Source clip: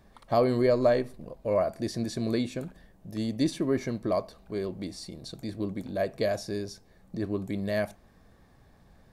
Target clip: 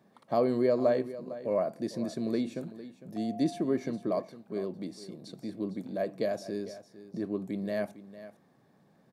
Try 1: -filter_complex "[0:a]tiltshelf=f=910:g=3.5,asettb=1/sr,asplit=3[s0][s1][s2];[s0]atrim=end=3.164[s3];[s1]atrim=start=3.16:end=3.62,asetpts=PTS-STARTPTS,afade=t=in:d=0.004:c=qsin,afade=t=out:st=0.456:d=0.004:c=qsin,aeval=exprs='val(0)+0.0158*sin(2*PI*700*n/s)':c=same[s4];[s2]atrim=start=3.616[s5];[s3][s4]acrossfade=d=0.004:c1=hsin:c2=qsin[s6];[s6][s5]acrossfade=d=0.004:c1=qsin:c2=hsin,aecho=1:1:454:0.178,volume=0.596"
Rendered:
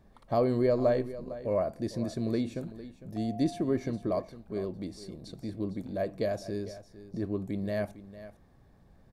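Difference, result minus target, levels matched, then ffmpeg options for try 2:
125 Hz band +6.0 dB
-filter_complex "[0:a]highpass=f=150:w=0.5412,highpass=f=150:w=1.3066,tiltshelf=f=910:g=3.5,asettb=1/sr,asplit=3[s0][s1][s2];[s0]atrim=end=3.164[s3];[s1]atrim=start=3.16:end=3.62,asetpts=PTS-STARTPTS,afade=t=in:d=0.004:c=qsin,afade=t=out:st=0.456:d=0.004:c=qsin,aeval=exprs='val(0)+0.0158*sin(2*PI*700*n/s)':c=same[s4];[s2]atrim=start=3.616[s5];[s3][s4]acrossfade=d=0.004:c1=hsin:c2=qsin[s6];[s6][s5]acrossfade=d=0.004:c1=qsin:c2=hsin,aecho=1:1:454:0.178,volume=0.596"

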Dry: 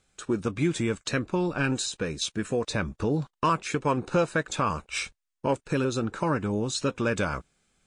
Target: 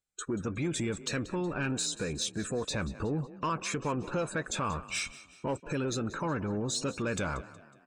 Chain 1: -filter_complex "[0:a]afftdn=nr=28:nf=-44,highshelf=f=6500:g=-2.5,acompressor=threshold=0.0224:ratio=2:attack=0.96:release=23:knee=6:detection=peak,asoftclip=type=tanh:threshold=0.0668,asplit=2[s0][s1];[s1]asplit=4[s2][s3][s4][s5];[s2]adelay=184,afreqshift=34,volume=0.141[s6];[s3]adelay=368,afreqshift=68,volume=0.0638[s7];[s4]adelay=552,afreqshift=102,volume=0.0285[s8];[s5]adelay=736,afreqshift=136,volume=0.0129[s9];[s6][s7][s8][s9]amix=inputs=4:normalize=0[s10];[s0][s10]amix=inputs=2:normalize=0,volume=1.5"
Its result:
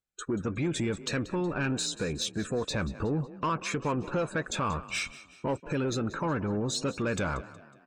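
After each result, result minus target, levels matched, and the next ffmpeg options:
8 kHz band -3.5 dB; compression: peak gain reduction -3 dB
-filter_complex "[0:a]afftdn=nr=28:nf=-44,highshelf=f=6500:g=8.5,acompressor=threshold=0.0224:ratio=2:attack=0.96:release=23:knee=6:detection=peak,asoftclip=type=tanh:threshold=0.0668,asplit=2[s0][s1];[s1]asplit=4[s2][s3][s4][s5];[s2]adelay=184,afreqshift=34,volume=0.141[s6];[s3]adelay=368,afreqshift=68,volume=0.0638[s7];[s4]adelay=552,afreqshift=102,volume=0.0285[s8];[s5]adelay=736,afreqshift=136,volume=0.0129[s9];[s6][s7][s8][s9]amix=inputs=4:normalize=0[s10];[s0][s10]amix=inputs=2:normalize=0,volume=1.5"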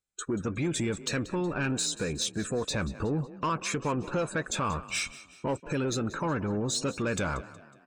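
compression: peak gain reduction -3 dB
-filter_complex "[0:a]afftdn=nr=28:nf=-44,highshelf=f=6500:g=8.5,acompressor=threshold=0.0112:ratio=2:attack=0.96:release=23:knee=6:detection=peak,asoftclip=type=tanh:threshold=0.0668,asplit=2[s0][s1];[s1]asplit=4[s2][s3][s4][s5];[s2]adelay=184,afreqshift=34,volume=0.141[s6];[s3]adelay=368,afreqshift=68,volume=0.0638[s7];[s4]adelay=552,afreqshift=102,volume=0.0285[s8];[s5]adelay=736,afreqshift=136,volume=0.0129[s9];[s6][s7][s8][s9]amix=inputs=4:normalize=0[s10];[s0][s10]amix=inputs=2:normalize=0,volume=1.5"

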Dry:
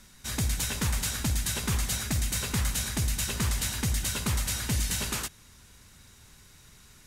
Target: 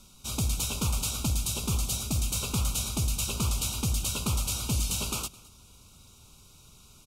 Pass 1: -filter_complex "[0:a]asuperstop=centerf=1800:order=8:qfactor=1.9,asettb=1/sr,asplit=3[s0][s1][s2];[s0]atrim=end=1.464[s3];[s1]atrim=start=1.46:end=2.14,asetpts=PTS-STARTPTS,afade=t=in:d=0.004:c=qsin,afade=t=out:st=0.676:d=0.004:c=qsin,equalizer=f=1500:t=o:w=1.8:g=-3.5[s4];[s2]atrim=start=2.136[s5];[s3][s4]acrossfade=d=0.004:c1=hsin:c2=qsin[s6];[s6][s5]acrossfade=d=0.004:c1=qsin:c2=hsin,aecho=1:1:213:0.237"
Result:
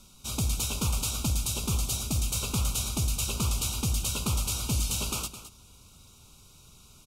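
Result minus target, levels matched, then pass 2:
echo-to-direct +9.5 dB
-filter_complex "[0:a]asuperstop=centerf=1800:order=8:qfactor=1.9,asettb=1/sr,asplit=3[s0][s1][s2];[s0]atrim=end=1.464[s3];[s1]atrim=start=1.46:end=2.14,asetpts=PTS-STARTPTS,afade=t=in:d=0.004:c=qsin,afade=t=out:st=0.676:d=0.004:c=qsin,equalizer=f=1500:t=o:w=1.8:g=-3.5[s4];[s2]atrim=start=2.136[s5];[s3][s4]acrossfade=d=0.004:c1=hsin:c2=qsin[s6];[s6][s5]acrossfade=d=0.004:c1=qsin:c2=hsin,aecho=1:1:213:0.0794"

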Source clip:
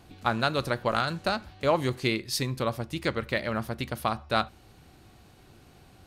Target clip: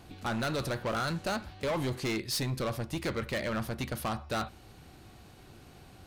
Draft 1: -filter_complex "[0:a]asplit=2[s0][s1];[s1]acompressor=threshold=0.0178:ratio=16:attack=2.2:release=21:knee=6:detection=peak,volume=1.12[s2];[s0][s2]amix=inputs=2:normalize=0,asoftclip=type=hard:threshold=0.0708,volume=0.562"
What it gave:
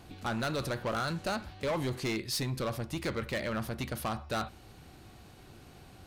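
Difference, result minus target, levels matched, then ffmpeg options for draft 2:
compression: peak gain reduction +7.5 dB
-filter_complex "[0:a]asplit=2[s0][s1];[s1]acompressor=threshold=0.0447:ratio=16:attack=2.2:release=21:knee=6:detection=peak,volume=1.12[s2];[s0][s2]amix=inputs=2:normalize=0,asoftclip=type=hard:threshold=0.0708,volume=0.562"

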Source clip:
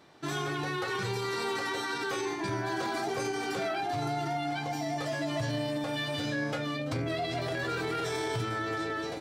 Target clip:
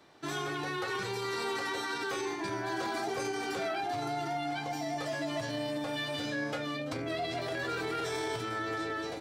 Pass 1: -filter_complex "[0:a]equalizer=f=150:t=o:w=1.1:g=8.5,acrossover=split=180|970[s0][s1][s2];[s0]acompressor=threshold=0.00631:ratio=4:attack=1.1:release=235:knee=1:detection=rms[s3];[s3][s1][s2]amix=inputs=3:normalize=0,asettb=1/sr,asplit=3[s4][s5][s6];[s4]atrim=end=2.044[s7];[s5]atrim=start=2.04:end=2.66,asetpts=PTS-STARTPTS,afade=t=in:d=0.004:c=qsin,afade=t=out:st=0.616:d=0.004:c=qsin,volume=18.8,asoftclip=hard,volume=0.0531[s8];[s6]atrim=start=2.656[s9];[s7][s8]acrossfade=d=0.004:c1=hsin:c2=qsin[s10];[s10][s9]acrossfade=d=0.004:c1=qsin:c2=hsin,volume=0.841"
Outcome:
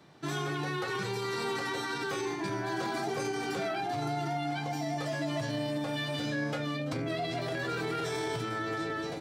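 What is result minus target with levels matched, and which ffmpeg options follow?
125 Hz band +5.5 dB
-filter_complex "[0:a]equalizer=f=150:t=o:w=1.1:g=-3.5,acrossover=split=180|970[s0][s1][s2];[s0]acompressor=threshold=0.00631:ratio=4:attack=1.1:release=235:knee=1:detection=rms[s3];[s3][s1][s2]amix=inputs=3:normalize=0,asettb=1/sr,asplit=3[s4][s5][s6];[s4]atrim=end=2.044[s7];[s5]atrim=start=2.04:end=2.66,asetpts=PTS-STARTPTS,afade=t=in:d=0.004:c=qsin,afade=t=out:st=0.616:d=0.004:c=qsin,volume=18.8,asoftclip=hard,volume=0.0531[s8];[s6]atrim=start=2.656[s9];[s7][s8]acrossfade=d=0.004:c1=hsin:c2=qsin[s10];[s10][s9]acrossfade=d=0.004:c1=qsin:c2=hsin,volume=0.841"

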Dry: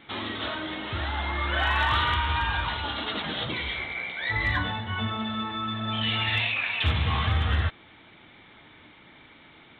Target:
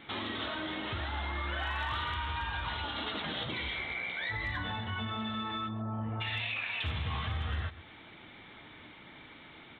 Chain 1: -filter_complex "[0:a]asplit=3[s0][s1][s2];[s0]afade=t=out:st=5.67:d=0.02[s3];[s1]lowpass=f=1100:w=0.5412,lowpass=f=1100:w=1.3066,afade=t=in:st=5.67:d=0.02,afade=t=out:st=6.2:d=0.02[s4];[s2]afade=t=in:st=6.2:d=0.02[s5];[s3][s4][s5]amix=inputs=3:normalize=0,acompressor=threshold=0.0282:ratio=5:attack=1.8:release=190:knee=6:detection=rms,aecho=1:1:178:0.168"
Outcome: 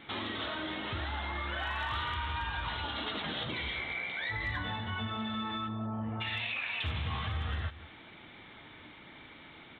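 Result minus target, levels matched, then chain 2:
echo 49 ms late
-filter_complex "[0:a]asplit=3[s0][s1][s2];[s0]afade=t=out:st=5.67:d=0.02[s3];[s1]lowpass=f=1100:w=0.5412,lowpass=f=1100:w=1.3066,afade=t=in:st=5.67:d=0.02,afade=t=out:st=6.2:d=0.02[s4];[s2]afade=t=in:st=6.2:d=0.02[s5];[s3][s4][s5]amix=inputs=3:normalize=0,acompressor=threshold=0.0282:ratio=5:attack=1.8:release=190:knee=6:detection=rms,aecho=1:1:129:0.168"

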